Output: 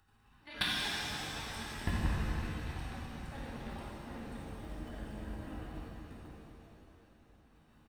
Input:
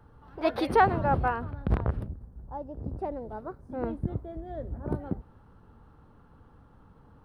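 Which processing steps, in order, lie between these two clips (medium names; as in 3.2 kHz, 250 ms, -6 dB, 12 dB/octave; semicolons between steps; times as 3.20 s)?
tremolo 9.1 Hz, depth 98%; transient shaper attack -6 dB, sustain +10 dB; tilt shelf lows -9 dB; compression 2.5:1, threshold -44 dBFS, peak gain reduction 14.5 dB; on a send: shuffle delay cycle 915 ms, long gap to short 3:1, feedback 47%, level -6.5 dB; on the sum: gate -47 dBFS, range -15 dB; comb 1 ms, depth 37%; speed mistake 48 kHz file played as 44.1 kHz; high-order bell 740 Hz -8.5 dB; level held to a coarse grid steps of 21 dB; crackling interface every 0.23 s, samples 2048, zero, from 0.74 s; pitch-shifted reverb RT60 2.9 s, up +7 st, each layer -8 dB, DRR -7 dB; trim +12.5 dB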